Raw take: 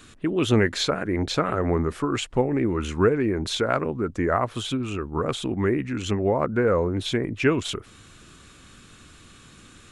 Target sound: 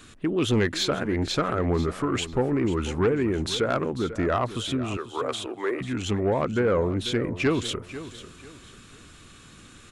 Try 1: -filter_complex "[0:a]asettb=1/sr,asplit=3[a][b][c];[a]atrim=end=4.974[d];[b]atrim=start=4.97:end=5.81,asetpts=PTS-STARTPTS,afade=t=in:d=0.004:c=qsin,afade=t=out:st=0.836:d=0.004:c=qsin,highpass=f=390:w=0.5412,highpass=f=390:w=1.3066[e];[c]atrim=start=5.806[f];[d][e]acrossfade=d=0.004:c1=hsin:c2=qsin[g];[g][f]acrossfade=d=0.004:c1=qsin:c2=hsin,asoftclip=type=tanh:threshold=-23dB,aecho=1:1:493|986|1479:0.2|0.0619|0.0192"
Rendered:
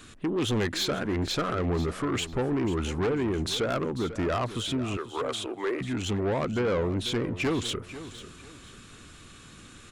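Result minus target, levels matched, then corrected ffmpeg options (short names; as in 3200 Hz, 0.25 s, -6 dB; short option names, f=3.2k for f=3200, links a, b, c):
soft clip: distortion +7 dB
-filter_complex "[0:a]asettb=1/sr,asplit=3[a][b][c];[a]atrim=end=4.974[d];[b]atrim=start=4.97:end=5.81,asetpts=PTS-STARTPTS,afade=t=in:d=0.004:c=qsin,afade=t=out:st=0.836:d=0.004:c=qsin,highpass=f=390:w=0.5412,highpass=f=390:w=1.3066[e];[c]atrim=start=5.806[f];[d][e]acrossfade=d=0.004:c1=hsin:c2=qsin[g];[g][f]acrossfade=d=0.004:c1=qsin:c2=hsin,asoftclip=type=tanh:threshold=-15dB,aecho=1:1:493|986|1479:0.2|0.0619|0.0192"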